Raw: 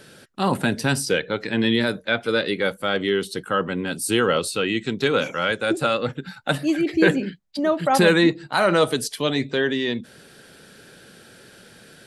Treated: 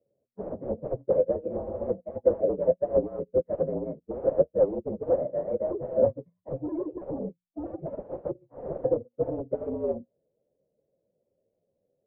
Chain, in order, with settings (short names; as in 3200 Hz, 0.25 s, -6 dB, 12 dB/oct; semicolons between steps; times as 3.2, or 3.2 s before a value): inharmonic rescaling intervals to 117%; sine folder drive 19 dB, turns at -6 dBFS; ladder low-pass 590 Hz, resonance 70%; notches 60/120/180/240 Hz; upward expander 2.5:1, over -35 dBFS; gain -4 dB